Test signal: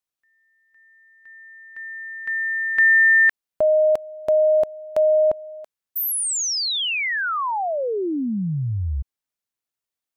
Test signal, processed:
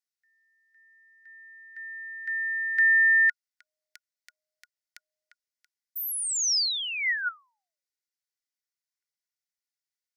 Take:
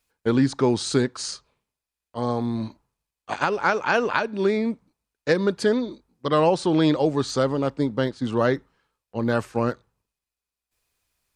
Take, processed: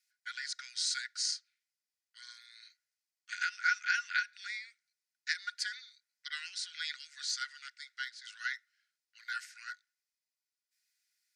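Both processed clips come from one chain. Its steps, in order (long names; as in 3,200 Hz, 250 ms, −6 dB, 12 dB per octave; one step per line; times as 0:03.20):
Chebyshev high-pass with heavy ripple 1,400 Hz, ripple 9 dB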